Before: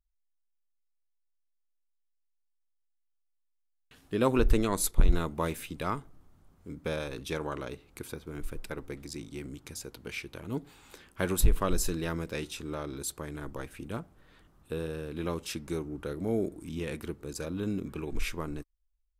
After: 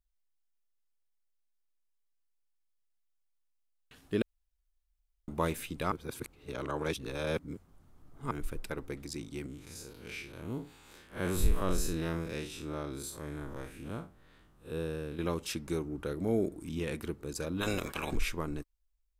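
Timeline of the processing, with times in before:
4.22–5.28 room tone
5.92–8.31 reverse
9.46–15.19 time blur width 0.104 s
17.6–18.14 spectral limiter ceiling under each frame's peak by 25 dB

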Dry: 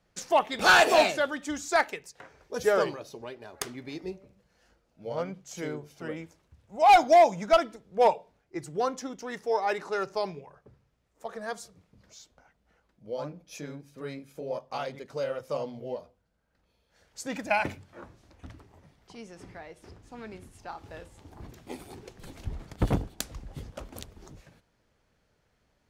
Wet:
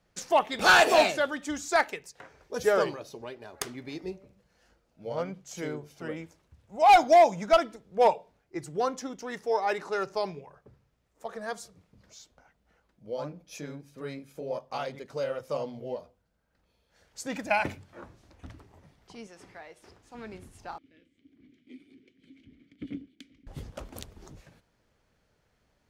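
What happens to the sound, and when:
19.27–20.15 low shelf 300 Hz -11.5 dB
20.78–23.47 vowel filter i

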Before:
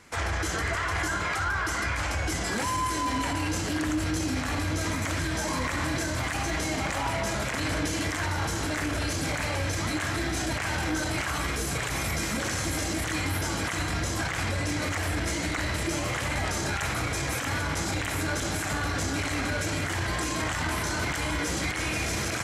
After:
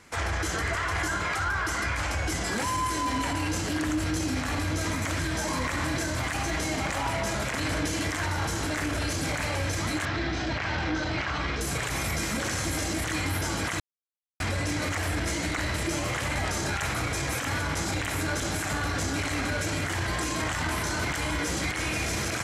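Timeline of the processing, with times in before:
10.05–11.61 LPF 5000 Hz 24 dB/oct
13.8–14.4 mute

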